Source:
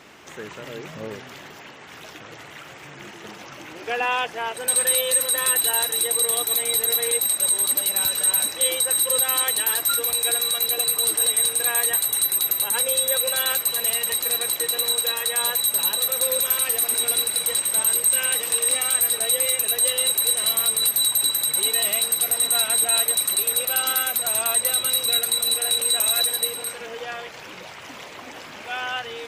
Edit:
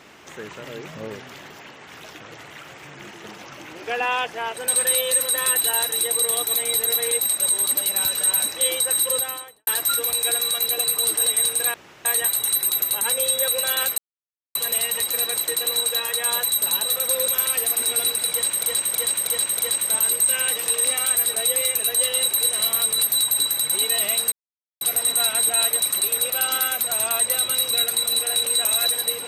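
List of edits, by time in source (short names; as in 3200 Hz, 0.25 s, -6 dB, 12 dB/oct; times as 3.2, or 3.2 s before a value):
9.06–9.67 studio fade out
11.74 insert room tone 0.31 s
13.67 insert silence 0.57 s
17.43–17.75 loop, 5 plays
22.16 insert silence 0.49 s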